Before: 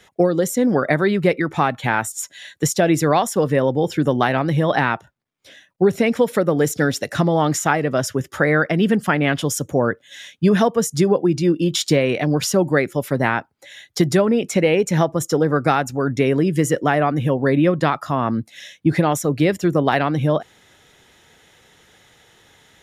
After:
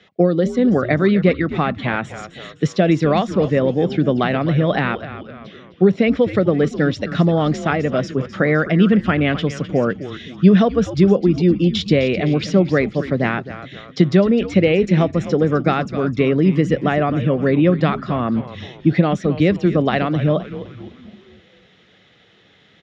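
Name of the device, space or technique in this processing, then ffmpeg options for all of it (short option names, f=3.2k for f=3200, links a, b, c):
frequency-shifting delay pedal into a guitar cabinet: -filter_complex "[0:a]asplit=6[a][b][c][d][e][f];[b]adelay=257,afreqshift=-130,volume=-12.5dB[g];[c]adelay=514,afreqshift=-260,volume=-18.9dB[h];[d]adelay=771,afreqshift=-390,volume=-25.3dB[i];[e]adelay=1028,afreqshift=-520,volume=-31.6dB[j];[f]adelay=1285,afreqshift=-650,volume=-38dB[k];[a][g][h][i][j][k]amix=inputs=6:normalize=0,highpass=90,equalizer=f=190:t=q:w=4:g=6,equalizer=f=910:t=q:w=4:g=-10,equalizer=f=1.6k:t=q:w=4:g=-4,lowpass=f=4.3k:w=0.5412,lowpass=f=4.3k:w=1.3066,volume=1dB"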